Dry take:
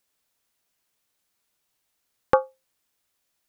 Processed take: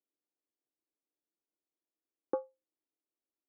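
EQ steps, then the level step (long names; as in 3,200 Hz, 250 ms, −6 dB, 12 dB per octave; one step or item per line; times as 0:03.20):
four-pole ladder band-pass 350 Hz, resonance 60%
−1.5 dB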